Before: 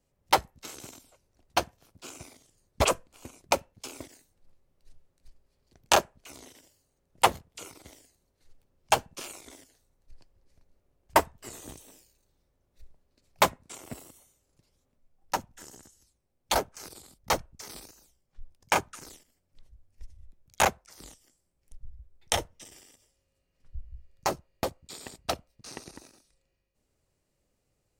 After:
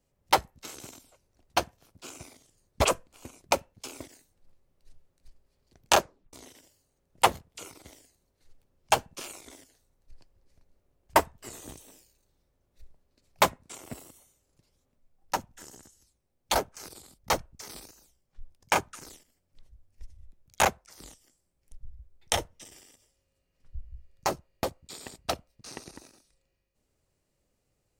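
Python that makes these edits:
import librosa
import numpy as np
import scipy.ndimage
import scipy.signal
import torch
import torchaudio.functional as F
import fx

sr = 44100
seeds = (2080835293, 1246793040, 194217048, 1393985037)

y = fx.edit(x, sr, fx.tape_stop(start_s=6.0, length_s=0.33), tone=tone)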